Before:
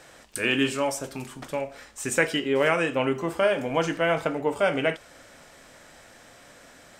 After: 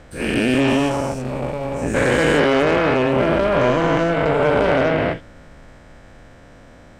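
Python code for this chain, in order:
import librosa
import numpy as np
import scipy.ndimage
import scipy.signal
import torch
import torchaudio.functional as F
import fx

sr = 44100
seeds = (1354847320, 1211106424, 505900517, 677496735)

y = fx.spec_dilate(x, sr, span_ms=480)
y = fx.riaa(y, sr, side='playback')
y = fx.cheby_harmonics(y, sr, harmonics=(4, 8), levels_db=(-21, -24), full_scale_db=0.0)
y = F.gain(torch.from_numpy(y), -3.0).numpy()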